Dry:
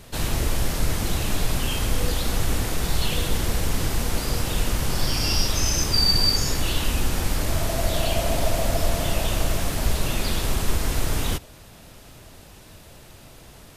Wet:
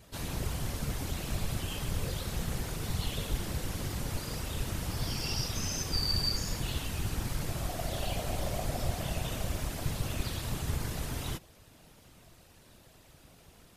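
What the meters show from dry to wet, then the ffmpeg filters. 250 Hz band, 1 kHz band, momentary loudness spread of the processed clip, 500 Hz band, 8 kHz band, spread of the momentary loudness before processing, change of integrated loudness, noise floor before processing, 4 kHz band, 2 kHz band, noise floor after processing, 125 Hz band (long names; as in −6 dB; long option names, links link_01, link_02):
−9.0 dB, −10.5 dB, 5 LU, −11.0 dB, −11.0 dB, 5 LU, −10.0 dB, −47 dBFS, −11.5 dB, −11.0 dB, −58 dBFS, −7.5 dB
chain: -af "afftfilt=real='hypot(re,im)*cos(2*PI*random(0))':imag='hypot(re,im)*sin(2*PI*random(1))':win_size=512:overlap=0.75,volume=-5dB"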